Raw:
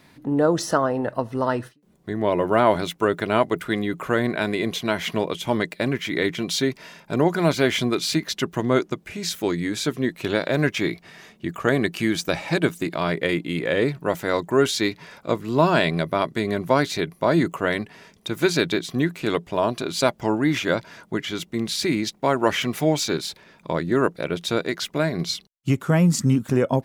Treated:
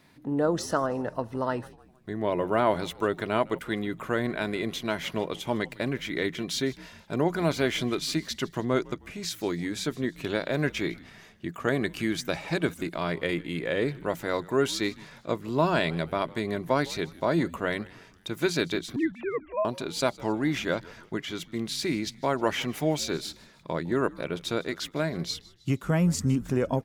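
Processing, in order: 18.96–19.65 sine-wave speech; on a send: frequency-shifting echo 0.156 s, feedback 47%, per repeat -88 Hz, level -21 dB; on the sum: gain -6 dB

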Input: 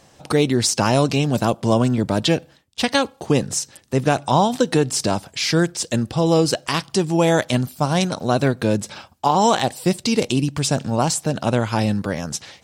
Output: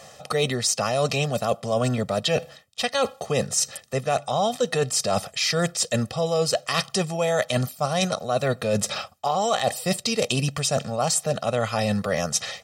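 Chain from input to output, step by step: HPF 270 Hz 6 dB/oct; comb 1.6 ms, depth 85%; reverse; compressor 6:1, threshold -26 dBFS, peak gain reduction 14.5 dB; reverse; gain +5.5 dB

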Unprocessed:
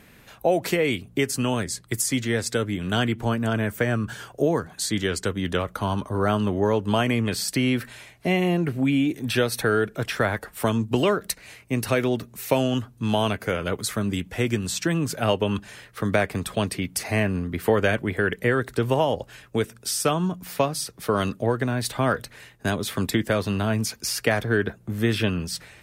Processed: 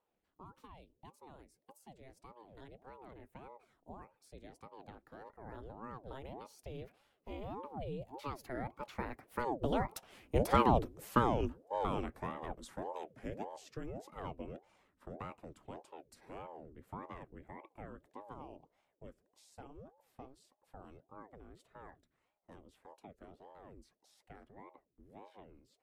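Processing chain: Doppler pass-by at 10.62, 41 m/s, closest 19 m; tilt shelf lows +5.5 dB, about 1300 Hz; ring modulator with a swept carrier 430 Hz, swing 70%, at 1.7 Hz; gain -6 dB

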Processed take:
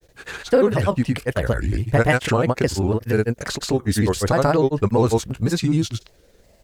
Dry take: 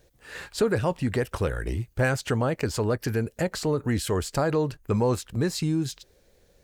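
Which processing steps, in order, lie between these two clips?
grains, pitch spread up and down by 3 st; gain +7.5 dB

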